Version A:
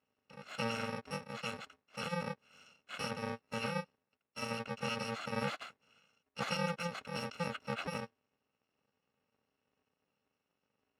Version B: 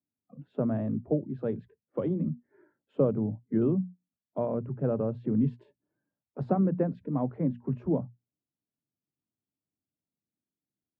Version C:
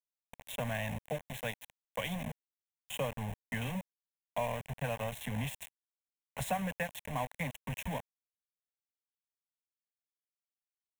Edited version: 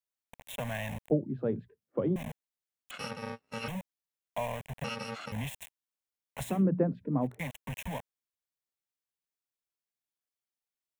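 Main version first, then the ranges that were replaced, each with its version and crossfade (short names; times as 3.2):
C
1.1–2.16 from B
2.91–3.68 from A
4.84–5.32 from A
6.53–7.32 from B, crossfade 0.24 s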